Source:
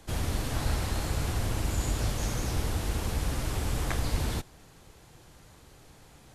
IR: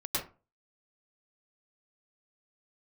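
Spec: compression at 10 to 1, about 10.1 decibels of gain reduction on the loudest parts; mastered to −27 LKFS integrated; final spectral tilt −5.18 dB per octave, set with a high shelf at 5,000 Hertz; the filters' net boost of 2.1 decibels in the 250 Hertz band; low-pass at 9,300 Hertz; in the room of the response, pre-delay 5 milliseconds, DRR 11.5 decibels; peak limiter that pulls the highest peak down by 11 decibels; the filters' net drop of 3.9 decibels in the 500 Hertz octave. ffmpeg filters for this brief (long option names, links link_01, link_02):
-filter_complex "[0:a]lowpass=9300,equalizer=frequency=250:width_type=o:gain=4.5,equalizer=frequency=500:width_type=o:gain=-6.5,highshelf=frequency=5000:gain=-5,acompressor=threshold=-33dB:ratio=10,alimiter=level_in=11dB:limit=-24dB:level=0:latency=1,volume=-11dB,asplit=2[link_01][link_02];[1:a]atrim=start_sample=2205,adelay=5[link_03];[link_02][link_03]afir=irnorm=-1:irlink=0,volume=-17dB[link_04];[link_01][link_04]amix=inputs=2:normalize=0,volume=19dB"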